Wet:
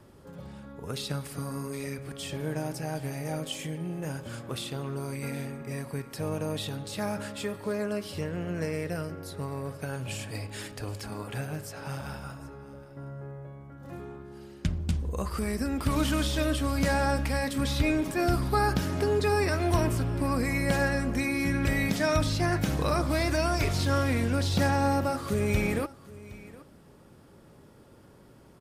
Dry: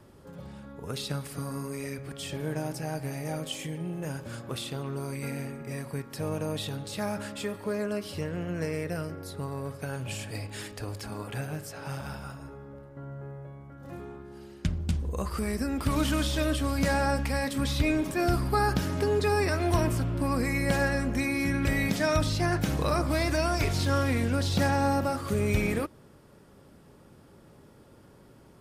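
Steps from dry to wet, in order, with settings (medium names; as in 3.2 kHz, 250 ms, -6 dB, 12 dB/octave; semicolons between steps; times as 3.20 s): delay 767 ms -19.5 dB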